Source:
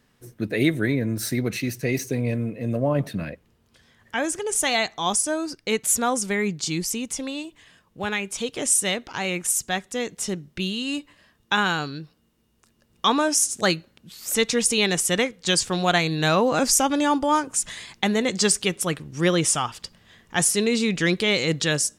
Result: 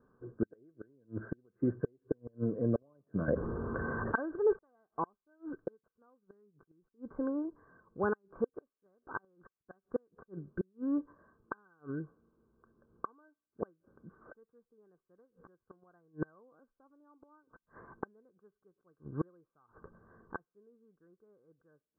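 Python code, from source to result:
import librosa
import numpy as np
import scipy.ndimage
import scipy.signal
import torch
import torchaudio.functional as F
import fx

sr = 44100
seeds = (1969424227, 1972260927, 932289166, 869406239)

y = fx.gate_flip(x, sr, shuts_db=-16.0, range_db=-40)
y = scipy.signal.sosfilt(scipy.signal.cheby1(6, 9, 1600.0, 'lowpass', fs=sr, output='sos'), y)
y = fx.env_flatten(y, sr, amount_pct=70, at=(3.28, 4.59))
y = y * librosa.db_to_amplitude(2.0)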